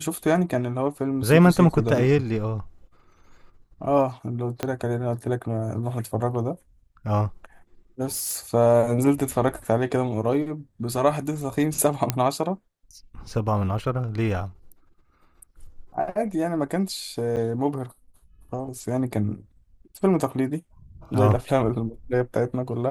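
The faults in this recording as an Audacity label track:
4.630000	4.630000	pop -11 dBFS
8.050000	8.390000	clipped -25.5 dBFS
12.100000	12.100000	pop -6 dBFS
17.360000	17.370000	gap 8.2 ms

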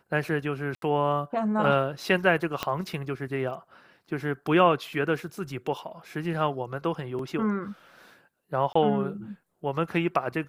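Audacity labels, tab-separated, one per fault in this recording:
0.750000	0.820000	gap 72 ms
2.630000	2.630000	pop -12 dBFS
7.190000	7.190000	gap 2.6 ms
8.730000	8.750000	gap 24 ms

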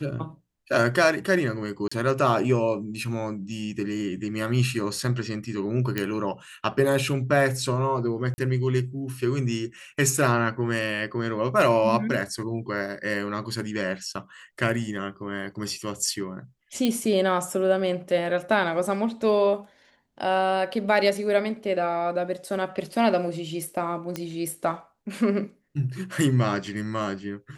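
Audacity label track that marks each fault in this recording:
1.880000	1.920000	gap 35 ms
5.980000	5.980000	pop -12 dBFS
8.340000	8.380000	gap 40 ms
16.850000	16.850000	pop -11 dBFS
24.160000	24.160000	pop -15 dBFS

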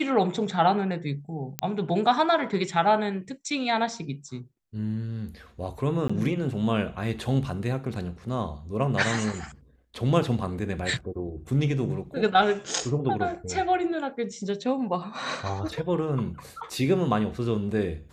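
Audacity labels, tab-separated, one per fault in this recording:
1.590000	1.590000	pop -10 dBFS
6.080000	6.090000	gap 15 ms

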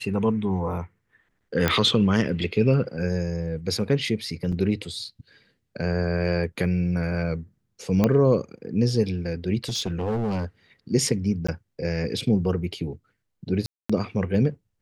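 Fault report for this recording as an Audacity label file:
1.680000	1.680000	pop -7 dBFS
4.520000	4.530000	gap 5.7 ms
8.040000	8.040000	pop -8 dBFS
9.640000	10.450000	clipped -22 dBFS
11.470000	11.480000	gap 15 ms
13.660000	13.890000	gap 0.235 s

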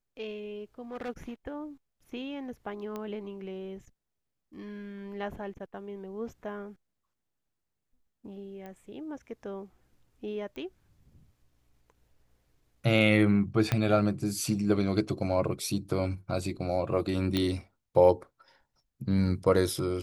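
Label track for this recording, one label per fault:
0.810000	1.100000	clipped -33.5 dBFS
2.960000	2.960000	pop -24 dBFS
8.660000	8.660000	pop -31 dBFS
10.560000	10.560000	pop -31 dBFS
13.720000	13.720000	pop -12 dBFS
17.370000	17.370000	pop -15 dBFS

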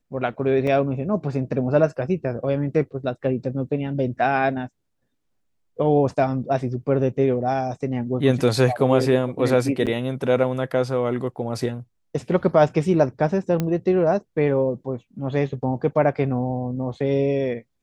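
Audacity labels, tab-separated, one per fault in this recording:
0.670000	0.670000	gap 3.4 ms
9.860000	9.870000	gap 7.9 ms
13.600000	13.600000	pop -11 dBFS

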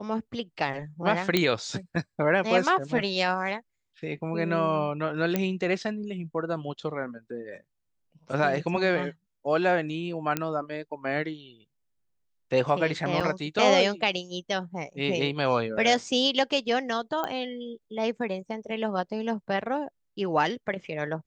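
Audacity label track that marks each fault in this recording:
1.370000	1.370000	pop -8 dBFS
5.360000	5.360000	pop -11 dBFS
10.370000	10.370000	pop -11 dBFS
13.200000	13.210000	gap 5.3 ms
17.240000	17.240000	pop -17 dBFS

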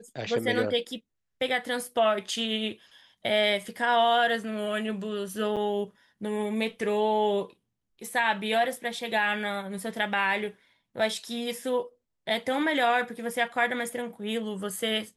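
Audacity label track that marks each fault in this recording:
5.560000	5.570000	gap 6.8 ms

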